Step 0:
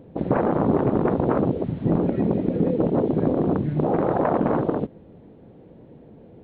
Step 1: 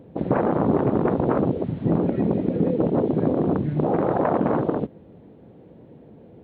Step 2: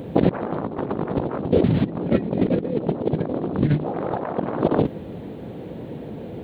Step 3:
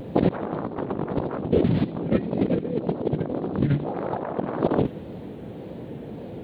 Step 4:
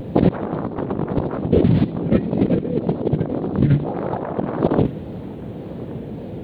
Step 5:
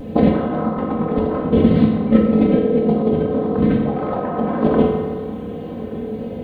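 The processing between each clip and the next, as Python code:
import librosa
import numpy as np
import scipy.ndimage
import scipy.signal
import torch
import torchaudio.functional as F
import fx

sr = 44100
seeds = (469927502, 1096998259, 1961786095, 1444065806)

y1 = scipy.signal.sosfilt(scipy.signal.butter(2, 58.0, 'highpass', fs=sr, output='sos'), x)
y2 = fx.high_shelf(y1, sr, hz=2400.0, db=10.0)
y2 = fx.over_compress(y2, sr, threshold_db=-27.0, ratio=-0.5)
y2 = y2 * 10.0 ** (6.0 / 20.0)
y3 = fx.echo_wet_highpass(y2, sr, ms=82, feedback_pct=57, hz=2600.0, wet_db=-13)
y3 = fx.vibrato(y3, sr, rate_hz=1.8, depth_cents=73.0)
y3 = y3 * 10.0 ** (-2.5 / 20.0)
y4 = fx.low_shelf(y3, sr, hz=210.0, db=6.5)
y4 = y4 + 10.0 ** (-21.0 / 20.0) * np.pad(y4, (int(1172 * sr / 1000.0), 0))[:len(y4)]
y4 = y4 * 10.0 ** (2.5 / 20.0)
y5 = y4 + 0.77 * np.pad(y4, (int(3.9 * sr / 1000.0), 0))[:len(y4)]
y5 = fx.rev_fdn(y5, sr, rt60_s=1.6, lf_ratio=0.7, hf_ratio=0.55, size_ms=14.0, drr_db=-3.0)
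y5 = y5 * 10.0 ** (-3.0 / 20.0)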